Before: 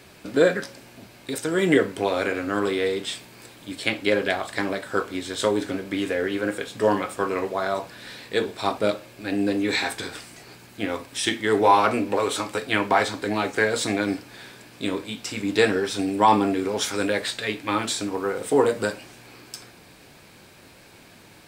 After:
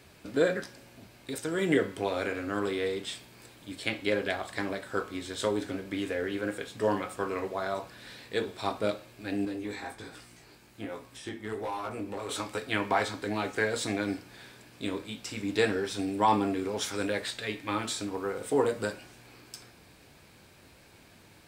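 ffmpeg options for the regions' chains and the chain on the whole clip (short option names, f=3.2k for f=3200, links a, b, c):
-filter_complex "[0:a]asettb=1/sr,asplit=3[a][b][c];[a]atrim=end=9.454[d];[b]atrim=start=9.45:end=12.29,asetpts=PTS-STARTPTS,afade=t=in:d=0.004:c=qsin,afade=t=out:st=2.836:d=0.004:c=qsin,flanger=delay=16.5:depth=3.7:speed=1.3,acrossover=split=1600|7100[e][f][g];[e]acompressor=threshold=-25dB:ratio=4[h];[f]acompressor=threshold=-43dB:ratio=4[i];[g]acompressor=threshold=-49dB:ratio=4[j];[h][i][j]amix=inputs=3:normalize=0,volume=22.5dB,asoftclip=hard,volume=-22.5dB[k];[c]atrim=start=12.286[l];[d][k]acrossfade=d=0.004:c1=hsin:c2=qsin[m];[m][l]acrossfade=d=0.004:c1=qsin:c2=hsin,equalizer=f=62:t=o:w=1.5:g=6.5,bandreject=f=183.1:t=h:w=4,bandreject=f=366.2:t=h:w=4,bandreject=f=549.3:t=h:w=4,bandreject=f=732.4:t=h:w=4,bandreject=f=915.5:t=h:w=4,bandreject=f=1.0986k:t=h:w=4,bandreject=f=1.2817k:t=h:w=4,bandreject=f=1.4648k:t=h:w=4,bandreject=f=1.6479k:t=h:w=4,bandreject=f=1.831k:t=h:w=4,bandreject=f=2.0141k:t=h:w=4,bandreject=f=2.1972k:t=h:w=4,bandreject=f=2.3803k:t=h:w=4,bandreject=f=2.5634k:t=h:w=4,bandreject=f=2.7465k:t=h:w=4,bandreject=f=2.9296k:t=h:w=4,bandreject=f=3.1127k:t=h:w=4,bandreject=f=3.2958k:t=h:w=4,bandreject=f=3.4789k:t=h:w=4,bandreject=f=3.662k:t=h:w=4,bandreject=f=3.8451k:t=h:w=4,bandreject=f=4.0282k:t=h:w=4,bandreject=f=4.2113k:t=h:w=4,bandreject=f=4.3944k:t=h:w=4,bandreject=f=4.5775k:t=h:w=4,bandreject=f=4.7606k:t=h:w=4,bandreject=f=4.9437k:t=h:w=4,bandreject=f=5.1268k:t=h:w=4,bandreject=f=5.3099k:t=h:w=4,bandreject=f=5.493k:t=h:w=4,bandreject=f=5.6761k:t=h:w=4,bandreject=f=5.8592k:t=h:w=4,bandreject=f=6.0423k:t=h:w=4,volume=-7dB"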